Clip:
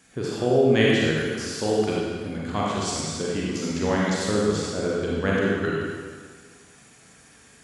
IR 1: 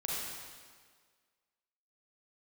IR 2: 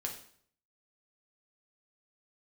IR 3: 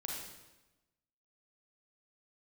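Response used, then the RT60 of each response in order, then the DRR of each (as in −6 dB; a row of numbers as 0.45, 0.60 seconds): 1; 1.7, 0.60, 1.0 seconds; −5.5, 0.5, −2.5 decibels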